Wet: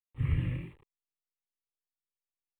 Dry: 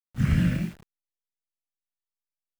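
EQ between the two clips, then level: dynamic EQ 120 Hz, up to +7 dB, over -35 dBFS, Q 1.3; running mean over 7 samples; fixed phaser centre 1000 Hz, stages 8; -6.0 dB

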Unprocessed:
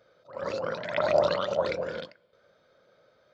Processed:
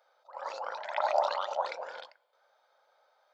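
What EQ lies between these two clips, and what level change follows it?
resonant high-pass 830 Hz, resonance Q 6.9; high shelf 4500 Hz +7.5 dB; -8.5 dB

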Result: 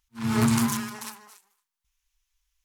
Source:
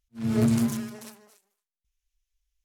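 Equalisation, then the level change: resonant low shelf 750 Hz -7 dB, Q 3; +7.5 dB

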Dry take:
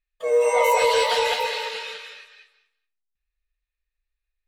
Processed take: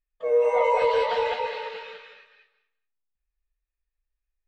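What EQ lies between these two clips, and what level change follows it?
tape spacing loss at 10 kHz 33 dB; 0.0 dB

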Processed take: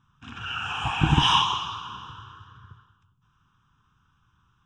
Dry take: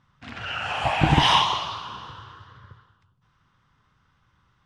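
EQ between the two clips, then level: fixed phaser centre 3000 Hz, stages 8; 0.0 dB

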